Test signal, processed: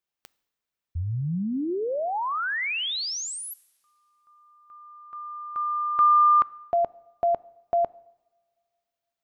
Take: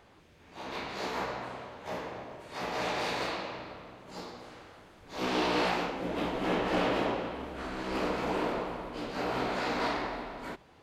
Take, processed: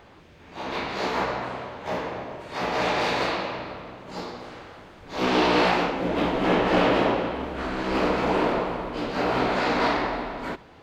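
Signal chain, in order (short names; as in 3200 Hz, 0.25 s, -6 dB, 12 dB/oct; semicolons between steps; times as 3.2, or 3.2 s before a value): bell 11000 Hz -9 dB 1.3 oct; two-slope reverb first 0.83 s, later 2.7 s, from -22 dB, DRR 19.5 dB; gain +8.5 dB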